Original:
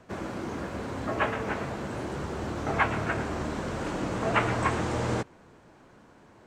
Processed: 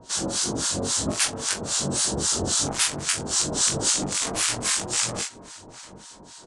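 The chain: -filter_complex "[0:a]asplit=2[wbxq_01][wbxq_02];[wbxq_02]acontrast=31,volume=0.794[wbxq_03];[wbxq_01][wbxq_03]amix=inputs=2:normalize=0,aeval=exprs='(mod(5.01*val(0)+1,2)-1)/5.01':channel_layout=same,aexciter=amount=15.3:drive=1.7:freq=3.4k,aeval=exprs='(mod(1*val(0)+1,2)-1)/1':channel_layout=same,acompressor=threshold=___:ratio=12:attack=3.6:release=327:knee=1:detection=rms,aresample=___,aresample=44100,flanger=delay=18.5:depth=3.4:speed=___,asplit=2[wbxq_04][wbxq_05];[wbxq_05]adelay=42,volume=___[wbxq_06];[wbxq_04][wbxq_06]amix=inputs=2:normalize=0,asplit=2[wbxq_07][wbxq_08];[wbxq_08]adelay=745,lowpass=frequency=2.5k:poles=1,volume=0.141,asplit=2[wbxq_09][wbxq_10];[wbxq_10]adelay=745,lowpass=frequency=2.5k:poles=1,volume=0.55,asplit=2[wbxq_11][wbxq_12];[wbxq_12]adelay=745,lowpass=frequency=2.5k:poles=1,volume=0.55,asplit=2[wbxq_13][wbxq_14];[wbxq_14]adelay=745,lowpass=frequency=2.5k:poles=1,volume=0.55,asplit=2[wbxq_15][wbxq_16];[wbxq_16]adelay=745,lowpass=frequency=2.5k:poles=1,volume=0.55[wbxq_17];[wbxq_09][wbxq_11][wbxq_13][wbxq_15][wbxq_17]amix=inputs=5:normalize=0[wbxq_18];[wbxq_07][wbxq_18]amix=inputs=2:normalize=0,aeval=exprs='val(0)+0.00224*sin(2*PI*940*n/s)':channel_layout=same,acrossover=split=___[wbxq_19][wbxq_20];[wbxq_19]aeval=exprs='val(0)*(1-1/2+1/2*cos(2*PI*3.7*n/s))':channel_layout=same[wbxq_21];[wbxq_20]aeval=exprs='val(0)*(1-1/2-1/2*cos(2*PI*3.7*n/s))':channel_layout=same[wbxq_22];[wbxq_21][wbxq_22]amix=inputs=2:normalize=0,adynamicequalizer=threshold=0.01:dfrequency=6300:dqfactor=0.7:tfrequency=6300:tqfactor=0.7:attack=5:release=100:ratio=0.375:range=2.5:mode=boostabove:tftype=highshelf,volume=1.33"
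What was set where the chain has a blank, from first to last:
0.2, 22050, 1.8, 0.473, 970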